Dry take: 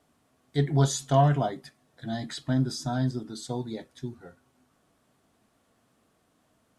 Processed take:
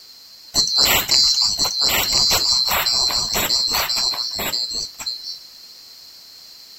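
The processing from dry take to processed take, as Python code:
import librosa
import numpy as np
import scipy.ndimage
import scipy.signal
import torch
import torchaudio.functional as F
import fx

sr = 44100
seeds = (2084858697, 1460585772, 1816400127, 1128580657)

y = fx.band_swap(x, sr, width_hz=4000)
y = y + 10.0 ** (-5.0 / 20.0) * np.pad(y, (int(1033 * sr / 1000.0), 0))[:len(y)]
y = fx.spectral_comp(y, sr, ratio=2.0)
y = y * 10.0 ** (7.0 / 20.0)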